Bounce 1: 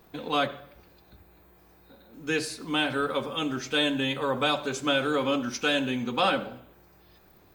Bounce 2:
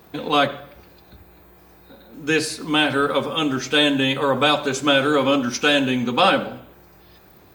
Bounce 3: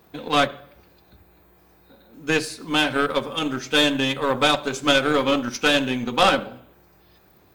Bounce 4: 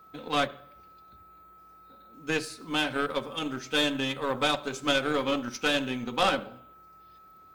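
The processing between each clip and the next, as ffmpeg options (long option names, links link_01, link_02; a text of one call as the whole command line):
ffmpeg -i in.wav -af "highpass=46,volume=8dB" out.wav
ffmpeg -i in.wav -af "aeval=exprs='0.708*(cos(1*acos(clip(val(0)/0.708,-1,1)))-cos(1*PI/2))+0.251*(cos(2*acos(clip(val(0)/0.708,-1,1)))-cos(2*PI/2))+0.0501*(cos(4*acos(clip(val(0)/0.708,-1,1)))-cos(4*PI/2))+0.0126*(cos(6*acos(clip(val(0)/0.708,-1,1)))-cos(6*PI/2))+0.0501*(cos(7*acos(clip(val(0)/0.708,-1,1)))-cos(7*PI/2))':channel_layout=same" out.wav
ffmpeg -i in.wav -af "aeval=exprs='val(0)+0.00631*sin(2*PI*1300*n/s)':channel_layout=same,volume=-7.5dB" out.wav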